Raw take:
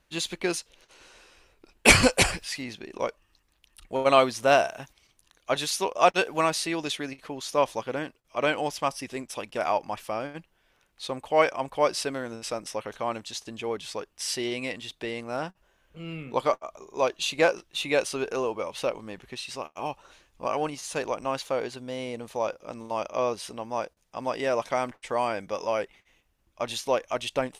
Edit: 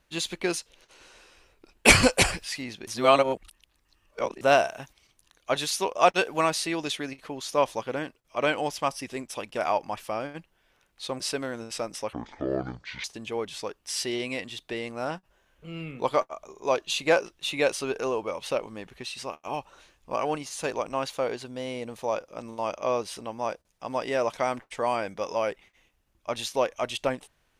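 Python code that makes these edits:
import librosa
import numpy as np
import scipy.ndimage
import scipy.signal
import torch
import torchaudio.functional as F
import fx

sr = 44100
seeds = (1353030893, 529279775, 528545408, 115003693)

y = fx.edit(x, sr, fx.reverse_span(start_s=2.87, length_s=1.54),
    fx.cut(start_s=11.2, length_s=0.72),
    fx.speed_span(start_s=12.85, length_s=0.51, speed=0.56), tone=tone)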